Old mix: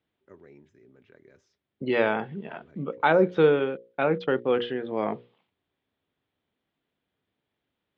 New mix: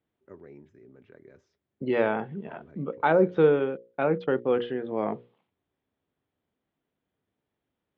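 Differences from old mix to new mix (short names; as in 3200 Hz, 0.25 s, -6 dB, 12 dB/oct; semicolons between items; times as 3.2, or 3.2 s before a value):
first voice +4.0 dB; master: add high shelf 2200 Hz -10.5 dB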